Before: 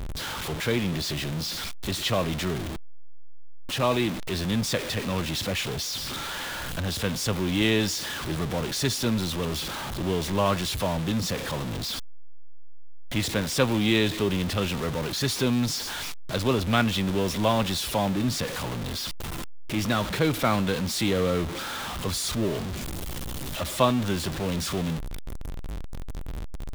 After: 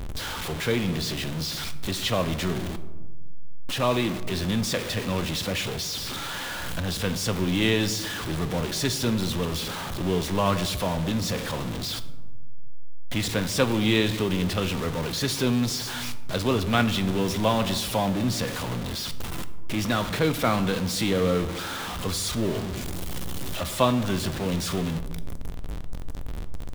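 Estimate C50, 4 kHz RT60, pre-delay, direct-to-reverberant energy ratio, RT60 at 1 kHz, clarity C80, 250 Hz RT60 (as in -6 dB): 13.5 dB, 0.60 s, 4 ms, 10.0 dB, 1.1 s, 15.5 dB, 1.7 s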